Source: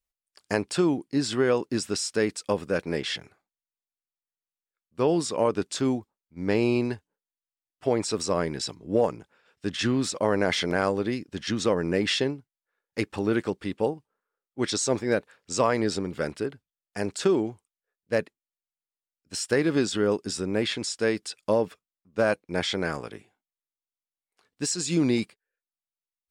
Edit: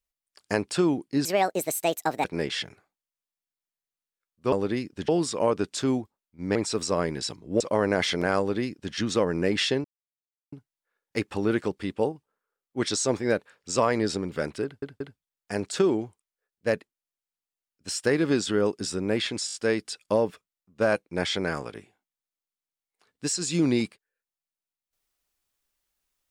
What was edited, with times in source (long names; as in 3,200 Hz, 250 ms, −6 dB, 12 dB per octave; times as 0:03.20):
0:01.25–0:02.78: play speed 154%
0:06.53–0:07.94: remove
0:08.99–0:10.10: remove
0:10.88–0:11.44: duplicate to 0:05.06
0:12.34: splice in silence 0.68 s
0:16.46: stutter 0.18 s, 3 plays
0:20.92: stutter 0.02 s, 5 plays